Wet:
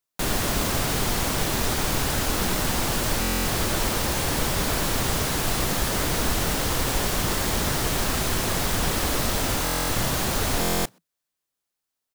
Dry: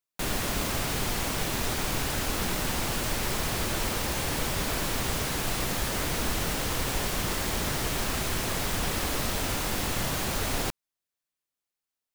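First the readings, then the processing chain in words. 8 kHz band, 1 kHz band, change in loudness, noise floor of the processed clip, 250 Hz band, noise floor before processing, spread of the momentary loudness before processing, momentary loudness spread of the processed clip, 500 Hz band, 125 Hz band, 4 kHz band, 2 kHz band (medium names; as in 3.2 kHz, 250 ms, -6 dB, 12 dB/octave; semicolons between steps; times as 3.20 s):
+5.0 dB, +5.0 dB, +5.0 dB, -84 dBFS, +5.5 dB, under -85 dBFS, 0 LU, 0 LU, +5.0 dB, +5.0 dB, +4.5 dB, +4.0 dB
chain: peaking EQ 2.4 kHz -2.5 dB; frequency-shifting echo 93 ms, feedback 33%, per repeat +53 Hz, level -17 dB; buffer glitch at 3.20/9.64/10.60 s, samples 1024, times 10; trim +5 dB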